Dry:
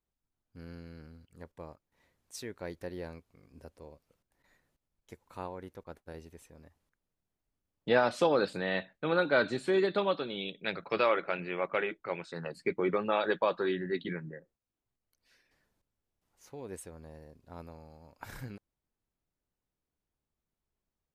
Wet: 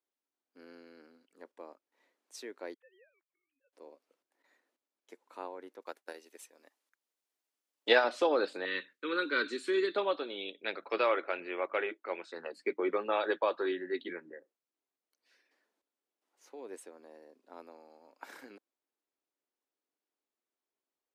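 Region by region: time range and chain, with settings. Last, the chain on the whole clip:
0:02.74–0:03.73: three sine waves on the formant tracks + first difference
0:05.82–0:08.04: spectral tilt +3 dB per octave + transient designer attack +8 dB, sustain −3 dB
0:08.65–0:09.95: Butterworth band-reject 710 Hz, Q 1.1 + high-shelf EQ 4,300 Hz +7 dB
whole clip: Butterworth high-pass 270 Hz 36 dB per octave; high-shelf EQ 9,500 Hz −9.5 dB; level −1.5 dB

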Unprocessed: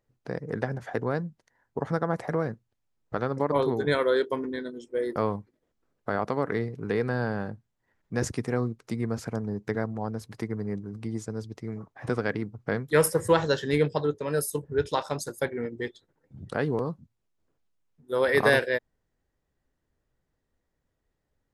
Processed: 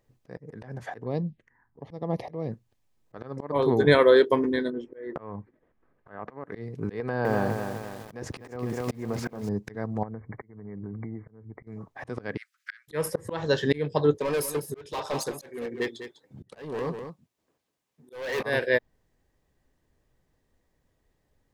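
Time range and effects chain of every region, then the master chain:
0:01.04–0:02.52: low-pass that shuts in the quiet parts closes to 1,500 Hz, open at −25.5 dBFS + phaser swept by the level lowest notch 480 Hz, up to 1,500 Hz, full sweep at −28 dBFS
0:04.70–0:06.44: low-pass with resonance 1,700 Hz, resonance Q 1.6 + downward compressor 2.5 to 1, threshold −30 dBFS
0:07.00–0:09.49: parametric band 760 Hz +7.5 dB 2.7 octaves + downward compressor 3 to 1, threshold −27 dBFS + feedback echo at a low word length 250 ms, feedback 55%, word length 8 bits, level −6.5 dB
0:10.03–0:11.67: downward compressor 12 to 1, threshold −39 dBFS + linear-phase brick-wall low-pass 2,300 Hz
0:12.37–0:12.88: transient designer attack −2 dB, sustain +4 dB + Butterworth high-pass 1,400 Hz 72 dB per octave
0:14.17–0:18.43: high-pass filter 290 Hz 6 dB per octave + hard clipping −30 dBFS + single-tap delay 200 ms −11 dB
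whole clip: notch filter 1,400 Hz, Q 8.6; dynamic equaliser 8,900 Hz, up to −7 dB, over −53 dBFS, Q 0.9; volume swells 411 ms; level +7 dB

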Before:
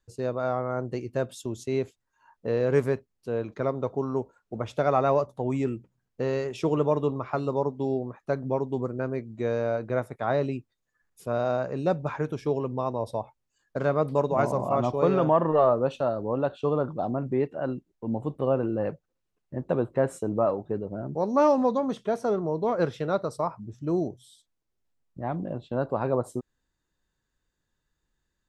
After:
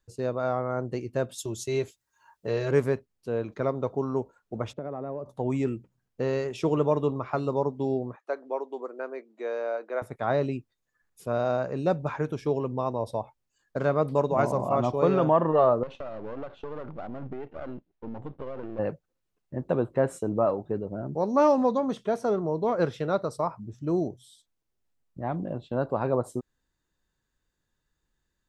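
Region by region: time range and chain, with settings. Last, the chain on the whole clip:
0:01.38–0:02.71: high-shelf EQ 3,000 Hz +10.5 dB + notch comb filter 250 Hz
0:04.73–0:05.26: resonant band-pass 250 Hz, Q 0.9 + downward compressor 5 to 1, threshold −30 dBFS
0:08.16–0:10.02: Bessel high-pass filter 520 Hz, order 6 + high-shelf EQ 4,000 Hz −9.5 dB
0:15.83–0:18.79: gain on one half-wave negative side −12 dB + low-pass filter 3,600 Hz + downward compressor 12 to 1, threshold −31 dBFS
whole clip: no processing

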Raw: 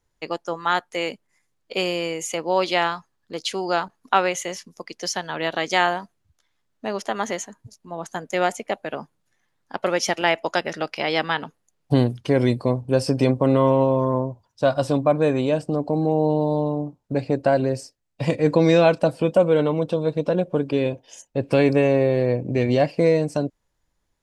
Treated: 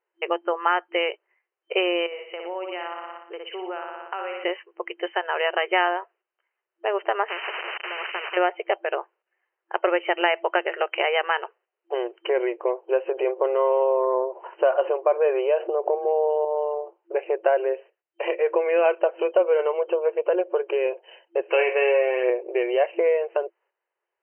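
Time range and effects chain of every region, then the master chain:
0:02.06–0:04.44: flutter between parallel walls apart 10.1 metres, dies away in 0.61 s + downward compressor 4 to 1, threshold −36 dBFS
0:07.28–0:08.37: spike at every zero crossing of −21.5 dBFS + low-pass filter 10,000 Hz 24 dB per octave + every bin compressed towards the loudest bin 10 to 1
0:13.11–0:16.45: spectral tilt −1.5 dB per octave + envelope flattener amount 50%
0:21.41–0:22.30: RIAA equalisation recording + double-tracking delay 24 ms −7 dB + flutter between parallel walls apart 8.2 metres, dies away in 0.3 s
whole clip: downward compressor 2.5 to 1, threshold −24 dBFS; noise gate −57 dBFS, range −8 dB; brick-wall band-pass 340–3,100 Hz; level +5.5 dB

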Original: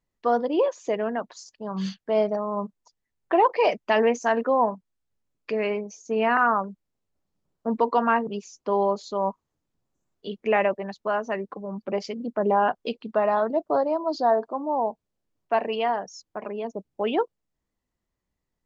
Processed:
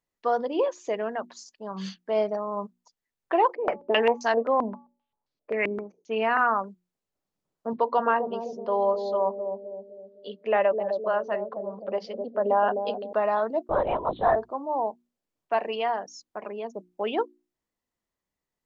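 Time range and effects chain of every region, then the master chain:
0:03.55–0:06.18: hum removal 284.8 Hz, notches 4 + low-pass on a step sequencer 7.6 Hz 280–4,600 Hz
0:07.73–0:13.13: loudspeaker in its box 210–4,500 Hz, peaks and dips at 330 Hz −7 dB, 570 Hz +5 dB, 2,300 Hz −9 dB + bucket-brigade delay 257 ms, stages 1,024, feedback 53%, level −4 dB
0:13.69–0:14.36: parametric band 2,800 Hz +11.5 dB 1.6 octaves + linear-prediction vocoder at 8 kHz whisper
whole clip: low-shelf EQ 170 Hz −10.5 dB; mains-hum notches 60/120/180/240/300/360 Hz; level −1.5 dB

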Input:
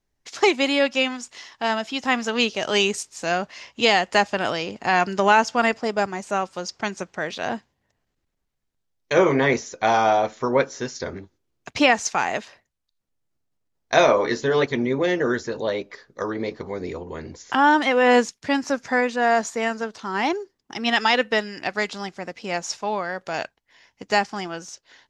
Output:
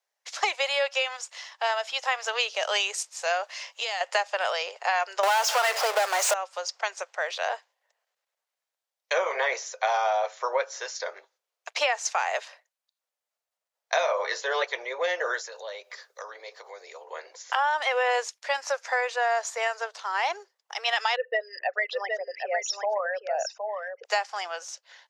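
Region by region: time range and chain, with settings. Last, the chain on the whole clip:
0:03.44–0:04.01: high-shelf EQ 4,500 Hz +7.5 dB + downward compressor 16 to 1, threshold −24 dBFS
0:05.23–0:06.34: high-pass filter 250 Hz 24 dB per octave + power curve on the samples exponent 0.35
0:15.41–0:17.04: high-shelf EQ 5,000 Hz +11.5 dB + downward compressor 2.5 to 1, threshold −37 dBFS
0:21.16–0:24.05: spectral envelope exaggerated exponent 3 + single-tap delay 766 ms −6 dB
whole clip: Butterworth high-pass 510 Hz 48 dB per octave; downward compressor 5 to 1, threshold −22 dBFS

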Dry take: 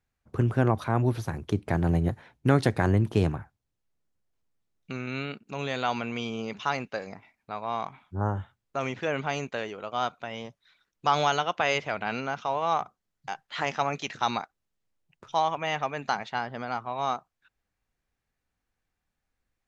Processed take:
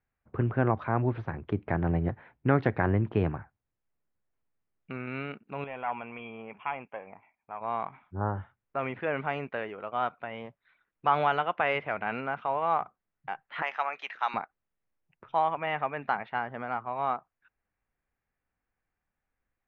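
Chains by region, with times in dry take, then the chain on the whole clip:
0:05.64–0:07.61: phase distortion by the signal itself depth 0.17 ms + Chebyshev low-pass with heavy ripple 3,400 Hz, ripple 9 dB
0:13.62–0:14.34: high-pass filter 800 Hz + parametric band 7,600 Hz +13 dB 1.2 octaves
whole clip: low-pass filter 2,400 Hz 24 dB per octave; low-shelf EQ 400 Hz −4 dB

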